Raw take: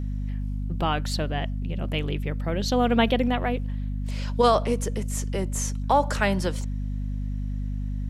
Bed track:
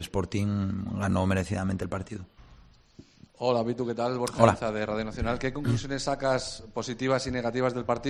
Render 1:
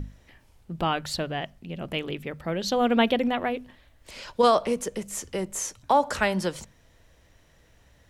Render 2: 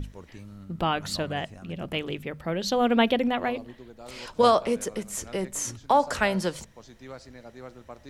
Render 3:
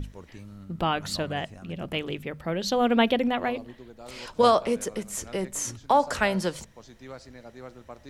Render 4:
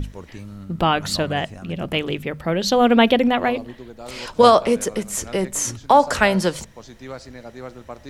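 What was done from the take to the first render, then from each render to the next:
hum notches 50/100/150/200/250 Hz
add bed track -16.5 dB
no audible change
trim +7.5 dB; peak limiter -3 dBFS, peak gain reduction 1.5 dB

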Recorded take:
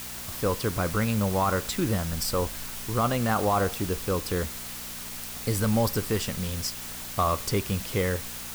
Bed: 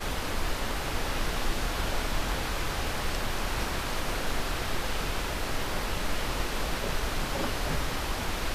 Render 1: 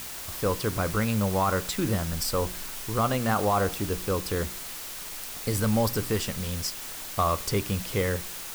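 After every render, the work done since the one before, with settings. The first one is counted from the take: de-hum 60 Hz, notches 6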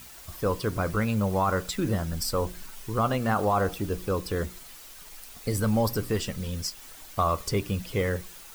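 noise reduction 10 dB, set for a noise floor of -38 dBFS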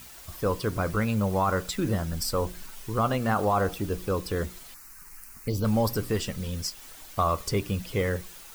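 4.74–5.65 s: touch-sensitive phaser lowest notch 510 Hz, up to 1.8 kHz, full sweep at -24 dBFS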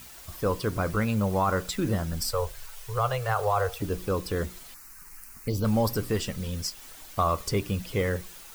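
2.31–3.82 s: Chebyshev band-stop 130–440 Hz, order 3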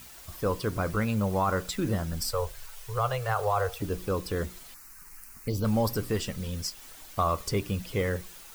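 trim -1.5 dB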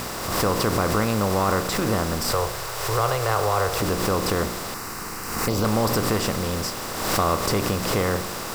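spectral levelling over time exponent 0.4; swell ahead of each attack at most 45 dB/s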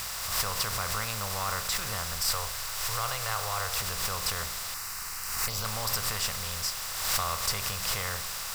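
amplifier tone stack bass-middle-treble 10-0-10

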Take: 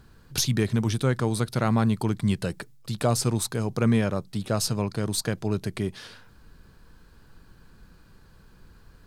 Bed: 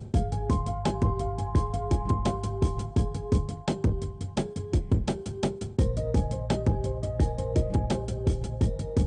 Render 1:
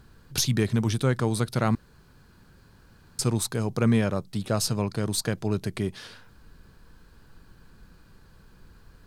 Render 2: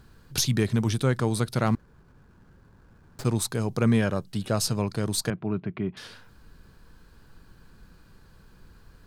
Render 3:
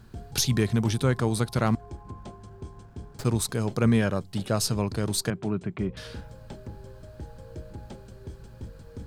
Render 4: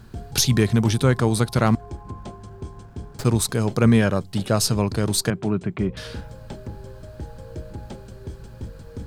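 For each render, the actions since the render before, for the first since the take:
1.75–3.19 s: room tone
1.66–3.25 s: median filter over 15 samples; 3.99–4.50 s: small resonant body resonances 1.6/2.9 kHz, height 10 dB; 5.30–5.97 s: cabinet simulation 130–2400 Hz, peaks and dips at 170 Hz +4 dB, 500 Hz -9 dB, 830 Hz -3 dB, 1.8 kHz -6 dB
add bed -15.5 dB
trim +5.5 dB

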